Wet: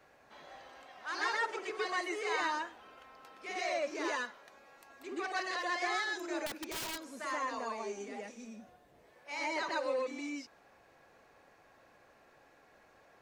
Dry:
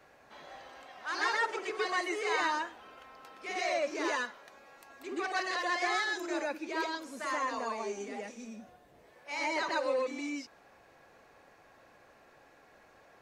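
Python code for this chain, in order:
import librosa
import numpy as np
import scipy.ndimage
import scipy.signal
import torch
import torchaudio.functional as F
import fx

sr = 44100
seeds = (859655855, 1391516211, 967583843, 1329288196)

y = fx.overflow_wrap(x, sr, gain_db=31.0, at=(6.46, 7.08))
y = F.gain(torch.from_numpy(y), -3.0).numpy()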